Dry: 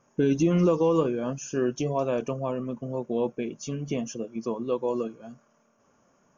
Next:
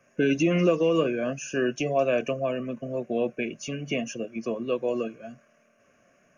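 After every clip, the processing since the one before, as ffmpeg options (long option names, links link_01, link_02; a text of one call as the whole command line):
ffmpeg -i in.wav -filter_complex "[0:a]superequalizer=8b=1.78:9b=0.316:11b=2.82:12b=3.55:16b=3.55,acrossover=split=140|370|2300[link_01][link_02][link_03][link_04];[link_01]acompressor=threshold=-48dB:ratio=6[link_05];[link_05][link_02][link_03][link_04]amix=inputs=4:normalize=0" out.wav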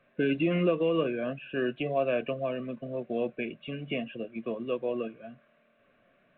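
ffmpeg -i in.wav -af "volume=-4dB" -ar 8000 -c:a pcm_mulaw out.wav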